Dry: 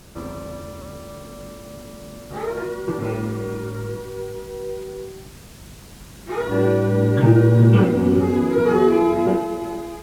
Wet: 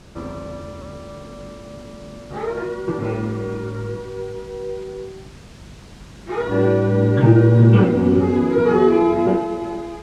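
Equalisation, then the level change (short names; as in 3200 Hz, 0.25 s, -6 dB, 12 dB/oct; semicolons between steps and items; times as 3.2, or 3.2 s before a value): air absorption 72 m; +1.5 dB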